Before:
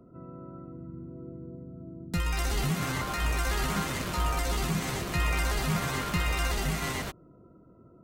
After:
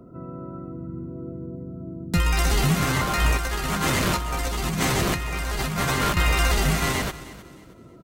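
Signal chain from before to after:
0:03.37–0:06.17: compressor whose output falls as the input rises −33 dBFS, ratio −1
repeating echo 313 ms, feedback 31%, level −17 dB
level +8 dB

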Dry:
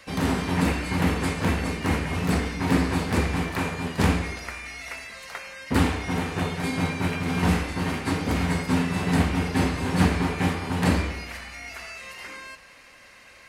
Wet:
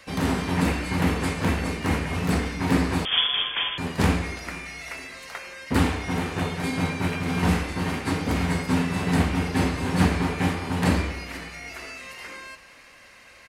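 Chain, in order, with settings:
on a send: echo with shifted repeats 474 ms, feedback 44%, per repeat +94 Hz, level −21 dB
0:03.05–0:03.78: on the sum: voice inversion scrambler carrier 3,400 Hz

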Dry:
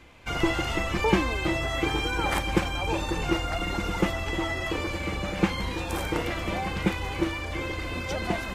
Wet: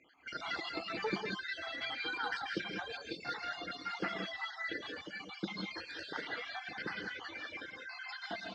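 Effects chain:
time-frequency cells dropped at random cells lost 61%
harmonic generator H 8 −28 dB, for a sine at −9 dBFS
loudspeaker in its box 340–4,900 Hz, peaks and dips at 360 Hz −5 dB, 550 Hz −9 dB, 1,000 Hz −7 dB, 1,600 Hz +7 dB, 2,600 Hz −8 dB, 4,500 Hz +10 dB
reverb whose tail is shaped and stops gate 220 ms rising, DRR −0.5 dB
reverb reduction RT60 1.1 s
level −6 dB

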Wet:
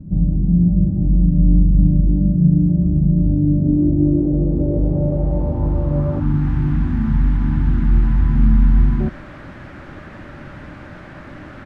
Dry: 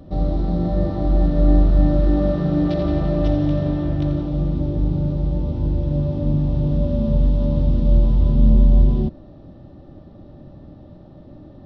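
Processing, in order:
slap from a distant wall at 25 metres, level −26 dB
in parallel at −1.5 dB: downward compressor 12 to 1, threshold −22 dBFS, peak gain reduction 14 dB
on the sum: time-frequency box erased 0:06.19–0:09.00, 360–740 Hz
bit-depth reduction 6 bits, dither triangular
low-pass filter sweep 180 Hz → 1,600 Hz, 0:03.09–0:06.54
level −1 dB

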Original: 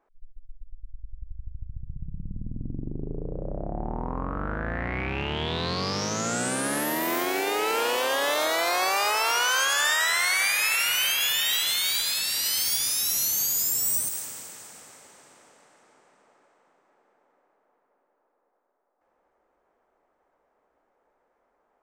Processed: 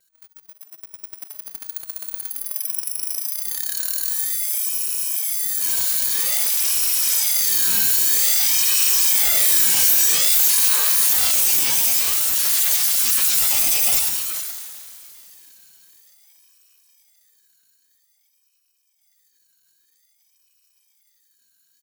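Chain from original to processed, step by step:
samples in bit-reversed order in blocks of 256 samples
high-pass filter 1,000 Hz 6 dB per octave
high-shelf EQ 4,100 Hz +9 dB
on a send: single-tap delay 422 ms −10 dB
on the sum: frozen spectrum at 0:04.10, 1.50 s
ring modulator whose carrier an LFO sweeps 700 Hz, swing 70%, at 0.51 Hz
level +3 dB

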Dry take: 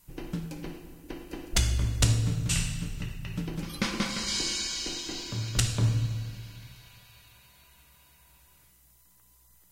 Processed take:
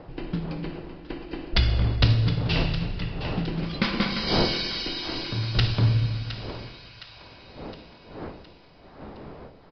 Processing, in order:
wind on the microphone 550 Hz −42 dBFS
downsampling to 11,025 Hz
echo with a time of its own for lows and highs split 690 Hz, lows 122 ms, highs 714 ms, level −11.5 dB
level +4.5 dB

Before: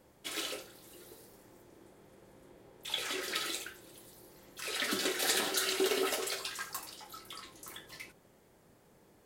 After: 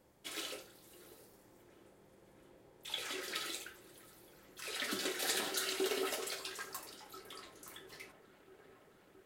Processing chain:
delay with a low-pass on its return 670 ms, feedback 78%, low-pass 1,700 Hz, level −19 dB
level −5 dB

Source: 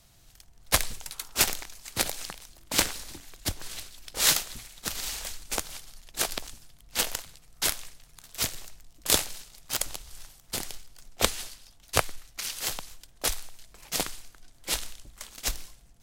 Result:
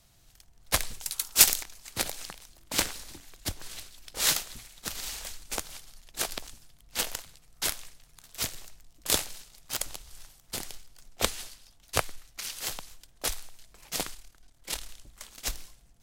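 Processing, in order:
0:01.01–0:01.63: high-shelf EQ 3,200 Hz +11 dB
0:14.14–0:14.89: amplitude modulation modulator 37 Hz, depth 45%
level −3 dB

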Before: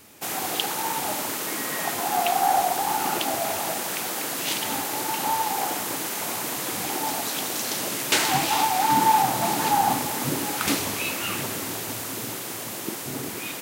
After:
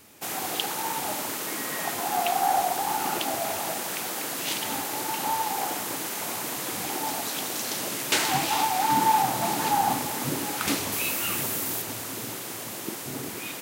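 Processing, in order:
0:10.92–0:11.82: high-shelf EQ 9,300 Hz +9.5 dB
level −2.5 dB

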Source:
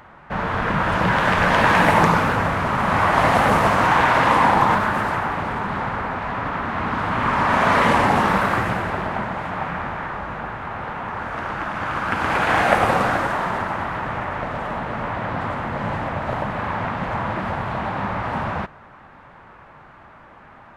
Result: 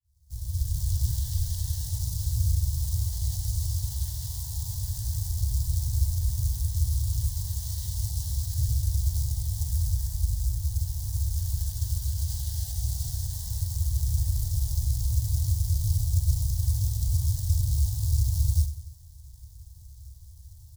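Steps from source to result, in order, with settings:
fade in at the beginning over 1.57 s
low-pass filter 11,000 Hz 24 dB per octave
on a send: repeating echo 95 ms, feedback 51%, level −13.5 dB
on the sum: brickwall limiter −11 dBFS, peak gain reduction 9 dB
parametric band 68 Hz +12.5 dB 0.73 octaves
floating-point word with a short mantissa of 2 bits
speech leveller within 4 dB 0.5 s
inverse Chebyshev band-stop filter 200–2,600 Hz, stop band 40 dB
level +3 dB

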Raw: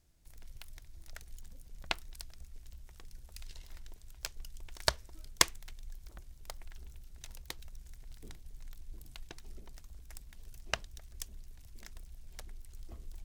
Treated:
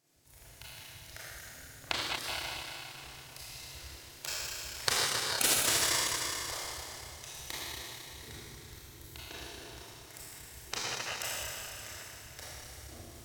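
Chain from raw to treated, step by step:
parametric band 200 Hz −13.5 dB 0.34 octaves
four-comb reverb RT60 3.2 s, combs from 26 ms, DRR −10 dB
gate on every frequency bin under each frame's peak −10 dB weak

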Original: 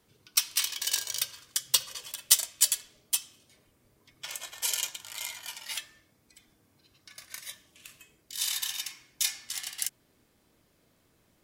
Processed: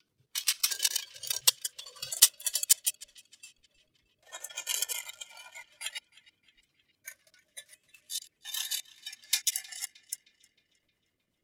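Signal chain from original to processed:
slices reordered back to front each 88 ms, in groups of 4
rotating-speaker cabinet horn 8 Hz
noise reduction from a noise print of the clip's start 14 dB
on a send: feedback echo with a band-pass in the loop 311 ms, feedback 54%, band-pass 2,500 Hz, level −19 dB
on the sum: level +2.5 dB

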